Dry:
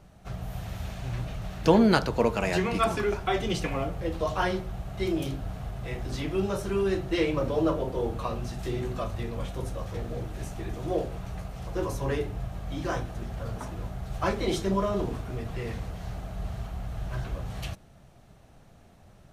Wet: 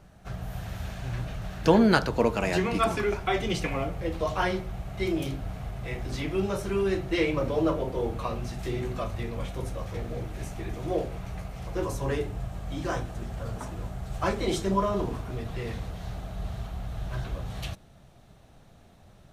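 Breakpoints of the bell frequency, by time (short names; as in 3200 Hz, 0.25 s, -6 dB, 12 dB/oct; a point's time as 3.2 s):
bell +4.5 dB 0.32 oct
1600 Hz
from 2.11 s 290 Hz
from 2.91 s 2200 Hz
from 11.84 s 7800 Hz
from 14.74 s 1000 Hz
from 15.31 s 3700 Hz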